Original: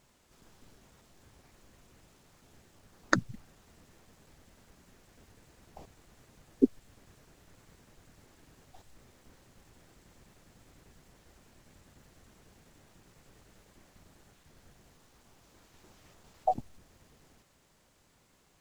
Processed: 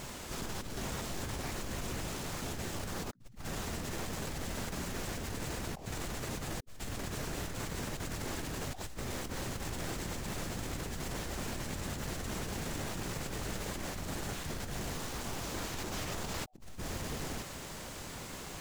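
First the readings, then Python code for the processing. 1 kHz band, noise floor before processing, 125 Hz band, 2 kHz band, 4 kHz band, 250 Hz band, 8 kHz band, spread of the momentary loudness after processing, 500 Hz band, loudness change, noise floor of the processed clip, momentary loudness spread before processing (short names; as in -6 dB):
-1.0 dB, -67 dBFS, +11.5 dB, +1.5 dB, +13.0 dB, -1.0 dB, +14.0 dB, 3 LU, +1.5 dB, -7.5 dB, -45 dBFS, 7 LU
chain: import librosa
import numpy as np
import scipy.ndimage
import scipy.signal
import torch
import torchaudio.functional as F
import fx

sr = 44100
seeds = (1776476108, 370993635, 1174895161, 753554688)

y = fx.over_compress(x, sr, threshold_db=-60.0, ratio=-1.0)
y = F.gain(torch.from_numpy(y), 13.5).numpy()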